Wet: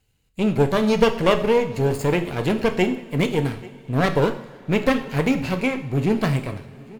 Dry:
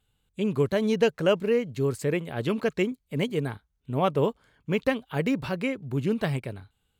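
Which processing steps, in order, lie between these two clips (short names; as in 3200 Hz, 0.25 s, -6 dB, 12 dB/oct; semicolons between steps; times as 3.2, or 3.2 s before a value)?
minimum comb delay 0.42 ms; echo 0.837 s -22 dB; two-slope reverb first 0.58 s, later 4.3 s, from -20 dB, DRR 6 dB; gain +6 dB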